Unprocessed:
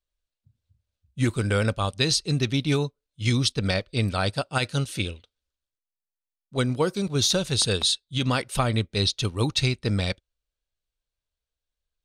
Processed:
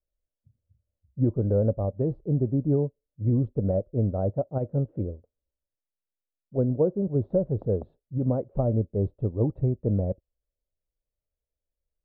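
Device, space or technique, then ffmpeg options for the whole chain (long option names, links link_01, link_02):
under water: -af "lowpass=frequency=610:width=0.5412,lowpass=frequency=610:width=1.3066,equalizer=frequency=590:width_type=o:width=0.5:gain=6"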